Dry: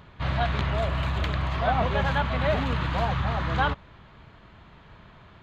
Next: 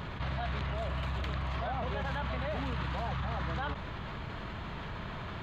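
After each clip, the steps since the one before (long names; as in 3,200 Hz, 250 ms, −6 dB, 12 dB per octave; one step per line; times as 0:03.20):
brickwall limiter −22.5 dBFS, peak gain reduction 10.5 dB
envelope flattener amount 70%
level −5.5 dB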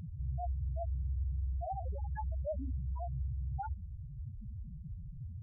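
spectral peaks only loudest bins 2
level +3 dB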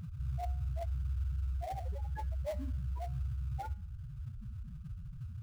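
in parallel at −11 dB: sample-rate reduction 1,400 Hz, jitter 20%
on the sum: tuned comb filter 120 Hz, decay 0.49 s, harmonics all, mix 50%
level +3.5 dB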